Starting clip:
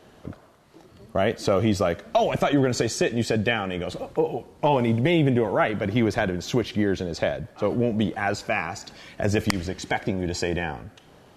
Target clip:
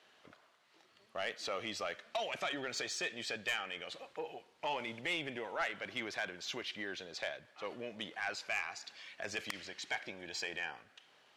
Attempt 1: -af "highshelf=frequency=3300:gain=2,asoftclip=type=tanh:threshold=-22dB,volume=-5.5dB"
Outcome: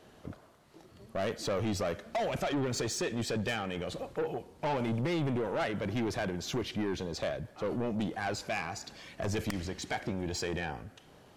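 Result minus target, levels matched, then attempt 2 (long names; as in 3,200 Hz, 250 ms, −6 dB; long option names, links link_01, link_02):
2,000 Hz band −6.5 dB
-af "bandpass=frequency=2700:width_type=q:width=0.85:csg=0,highshelf=frequency=3300:gain=2,asoftclip=type=tanh:threshold=-22dB,volume=-5.5dB"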